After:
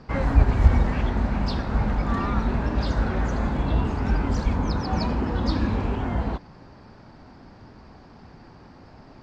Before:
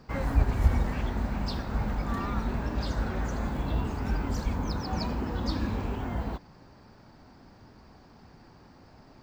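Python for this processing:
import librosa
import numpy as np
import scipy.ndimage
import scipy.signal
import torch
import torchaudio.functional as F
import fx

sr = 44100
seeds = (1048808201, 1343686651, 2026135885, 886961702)

y = fx.air_absorb(x, sr, metres=86.0)
y = y * librosa.db_to_amplitude(6.5)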